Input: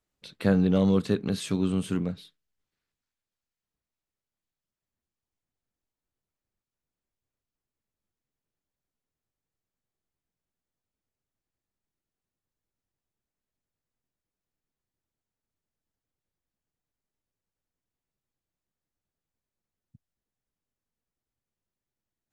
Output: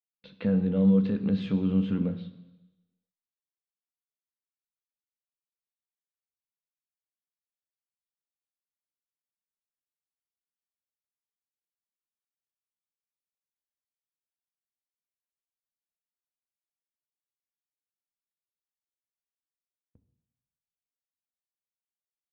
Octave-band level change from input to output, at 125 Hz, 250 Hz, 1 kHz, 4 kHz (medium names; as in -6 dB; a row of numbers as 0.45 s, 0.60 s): 0.0 dB, +1.0 dB, -9.5 dB, -8.5 dB